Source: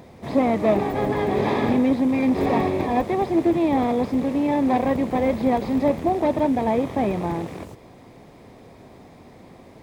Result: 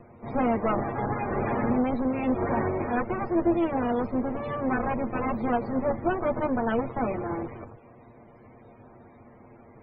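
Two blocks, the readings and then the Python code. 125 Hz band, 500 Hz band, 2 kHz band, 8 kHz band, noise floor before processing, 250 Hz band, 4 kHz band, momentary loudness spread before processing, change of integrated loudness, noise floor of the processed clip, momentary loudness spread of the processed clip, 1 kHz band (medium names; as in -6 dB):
-4.0 dB, -6.0 dB, -2.5 dB, no reading, -47 dBFS, -6.5 dB, under -10 dB, 4 LU, -6.0 dB, -52 dBFS, 5 LU, -4.5 dB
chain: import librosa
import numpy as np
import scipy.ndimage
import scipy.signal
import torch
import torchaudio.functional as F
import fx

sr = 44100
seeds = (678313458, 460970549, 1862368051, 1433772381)

y = fx.lower_of_two(x, sr, delay_ms=8.6)
y = fx.spec_topn(y, sr, count=64)
y = y * librosa.db_to_amplitude(-3.0)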